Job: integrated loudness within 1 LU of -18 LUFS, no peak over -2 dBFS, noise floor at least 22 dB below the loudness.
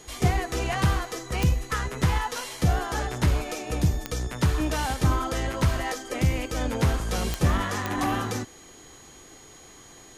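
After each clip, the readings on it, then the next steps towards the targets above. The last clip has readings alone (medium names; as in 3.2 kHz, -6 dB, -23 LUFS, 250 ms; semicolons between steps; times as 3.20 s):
clicks found 4; steady tone 6.7 kHz; tone level -51 dBFS; loudness -26.5 LUFS; peak level -10.0 dBFS; loudness target -18.0 LUFS
-> de-click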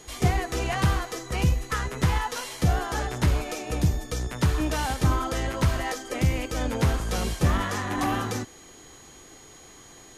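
clicks found 0; steady tone 6.7 kHz; tone level -51 dBFS
-> band-stop 6.7 kHz, Q 30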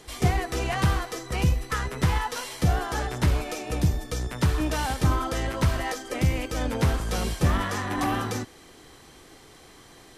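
steady tone not found; loudness -27.0 LUFS; peak level -10.0 dBFS; loudness target -18.0 LUFS
-> trim +9 dB; peak limiter -2 dBFS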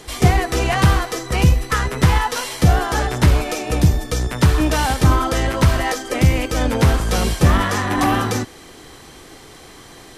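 loudness -18.0 LUFS; peak level -2.0 dBFS; noise floor -42 dBFS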